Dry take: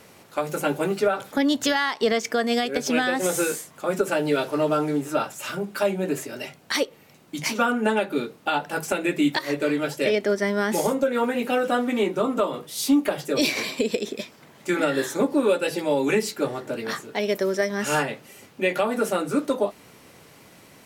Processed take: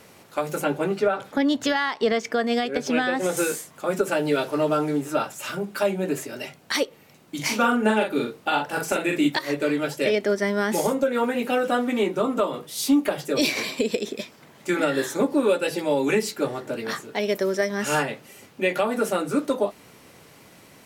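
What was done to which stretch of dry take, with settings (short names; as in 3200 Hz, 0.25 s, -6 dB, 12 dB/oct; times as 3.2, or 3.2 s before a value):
0.64–3.37 LPF 3700 Hz 6 dB/oct
7.35–9.27 doubler 42 ms -4 dB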